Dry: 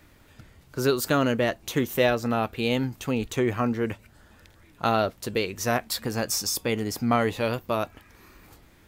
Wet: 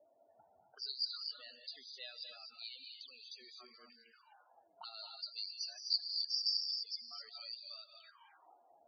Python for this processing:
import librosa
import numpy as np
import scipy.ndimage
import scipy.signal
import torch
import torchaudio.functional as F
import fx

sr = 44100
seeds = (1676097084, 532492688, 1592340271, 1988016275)

y = fx.auto_wah(x, sr, base_hz=570.0, top_hz=4700.0, q=17.0, full_db=-29.0, direction='up')
y = fx.rev_gated(y, sr, seeds[0], gate_ms=280, shape='rising', drr_db=2.5)
y = fx.spec_topn(y, sr, count=32)
y = y * librosa.db_to_amplitude(6.0)